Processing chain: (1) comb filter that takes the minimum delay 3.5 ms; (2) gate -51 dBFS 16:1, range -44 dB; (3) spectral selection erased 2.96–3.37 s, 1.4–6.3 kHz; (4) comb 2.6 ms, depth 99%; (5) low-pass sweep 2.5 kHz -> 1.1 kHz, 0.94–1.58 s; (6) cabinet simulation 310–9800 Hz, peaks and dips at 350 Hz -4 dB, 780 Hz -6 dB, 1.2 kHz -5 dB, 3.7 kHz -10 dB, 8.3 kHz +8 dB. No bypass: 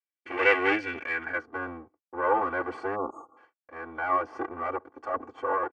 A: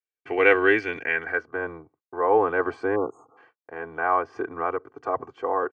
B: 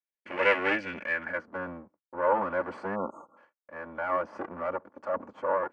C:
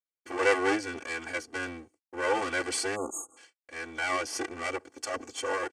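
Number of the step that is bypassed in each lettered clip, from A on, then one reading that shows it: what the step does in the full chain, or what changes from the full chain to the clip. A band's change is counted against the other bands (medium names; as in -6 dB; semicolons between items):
1, 500 Hz band +2.5 dB; 4, 125 Hz band +4.0 dB; 5, 1 kHz band -4.5 dB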